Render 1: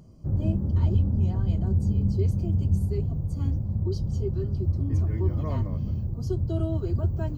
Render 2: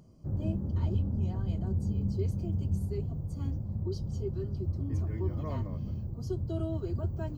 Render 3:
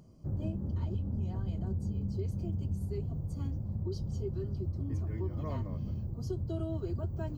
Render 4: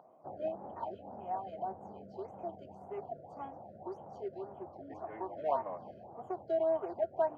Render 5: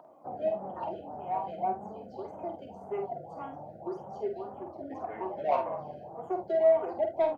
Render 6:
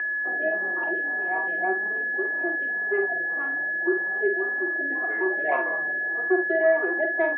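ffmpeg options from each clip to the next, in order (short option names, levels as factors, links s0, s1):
-af "lowshelf=f=120:g=-5.5,volume=0.631"
-af "acompressor=threshold=0.0316:ratio=6"
-af "adynamicsmooth=sensitivity=4.5:basefreq=1300,highpass=f=750:t=q:w=5,afftfilt=real='re*(1-between(b*sr/1024,950*pow(4900/950,0.5+0.5*sin(2*PI*1.8*pts/sr))/1.41,950*pow(4900/950,0.5+0.5*sin(2*PI*1.8*pts/sr))*1.41))':imag='im*(1-between(b*sr/1024,950*pow(4900/950,0.5+0.5*sin(2*PI*1.8*pts/sr))/1.41,950*pow(4900/950,0.5+0.5*sin(2*PI*1.8*pts/sr))*1.41))':win_size=1024:overlap=0.75,volume=2.24"
-filter_complex "[0:a]acrossover=split=100|570[s0][s1][s2];[s2]asoftclip=type=tanh:threshold=0.0299[s3];[s0][s1][s3]amix=inputs=3:normalize=0,flanger=delay=3.1:depth=3.8:regen=37:speed=0.42:shape=triangular,aecho=1:1:48|75:0.473|0.141,volume=2.82"
-af "acrusher=bits=10:mix=0:aa=0.000001,aeval=exprs='val(0)+0.0224*sin(2*PI*1700*n/s)':c=same,highpass=f=210:w=0.5412,highpass=f=210:w=1.3066,equalizer=f=210:t=q:w=4:g=-8,equalizer=f=360:t=q:w=4:g=10,equalizer=f=550:t=q:w=4:g=-5,equalizer=f=870:t=q:w=4:g=-7,equalizer=f=1300:t=q:w=4:g=5,equalizer=f=1900:t=q:w=4:g=7,lowpass=f=2600:w=0.5412,lowpass=f=2600:w=1.3066,volume=1.58"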